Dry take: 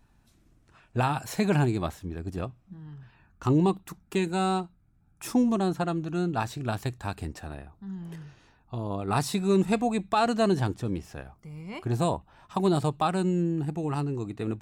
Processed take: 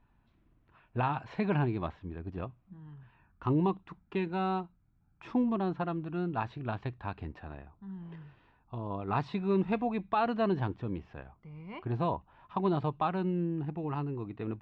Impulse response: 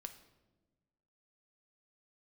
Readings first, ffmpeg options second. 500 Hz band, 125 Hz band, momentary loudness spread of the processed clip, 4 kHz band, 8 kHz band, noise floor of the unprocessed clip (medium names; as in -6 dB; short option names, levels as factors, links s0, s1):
-5.5 dB, -5.5 dB, 17 LU, -11.5 dB, under -30 dB, -63 dBFS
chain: -af "lowpass=f=3200:w=0.5412,lowpass=f=3200:w=1.3066,equalizer=f=1000:w=6:g=6,volume=0.531"